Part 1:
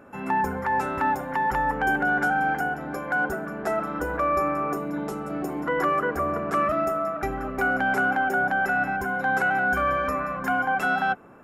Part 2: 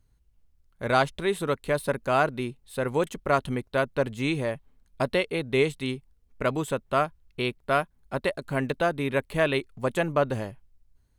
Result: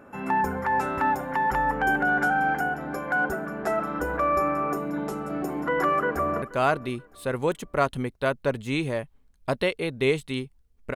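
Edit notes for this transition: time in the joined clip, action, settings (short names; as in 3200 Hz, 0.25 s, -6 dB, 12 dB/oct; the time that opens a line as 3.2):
part 1
5.95–6.42 echo throw 0.48 s, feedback 35%, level -18 dB
6.42 switch to part 2 from 1.94 s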